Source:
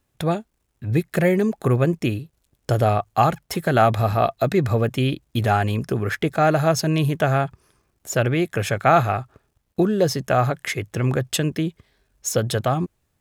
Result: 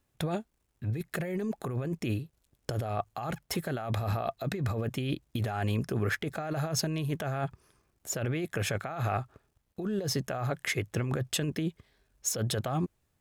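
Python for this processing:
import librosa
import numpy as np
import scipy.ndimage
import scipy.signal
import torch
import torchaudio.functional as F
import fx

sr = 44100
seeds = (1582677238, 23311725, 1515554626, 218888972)

y = fx.over_compress(x, sr, threshold_db=-23.0, ratio=-1.0)
y = y * 10.0 ** (-8.0 / 20.0)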